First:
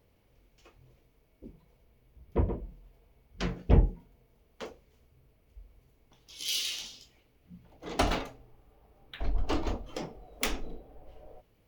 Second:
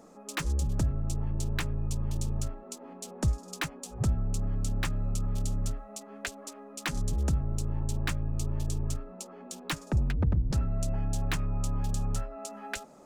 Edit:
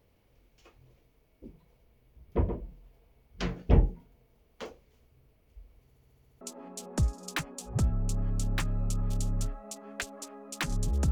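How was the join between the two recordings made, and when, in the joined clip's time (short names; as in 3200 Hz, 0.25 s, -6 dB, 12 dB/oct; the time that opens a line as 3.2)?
first
5.85 stutter in place 0.07 s, 8 plays
6.41 switch to second from 2.66 s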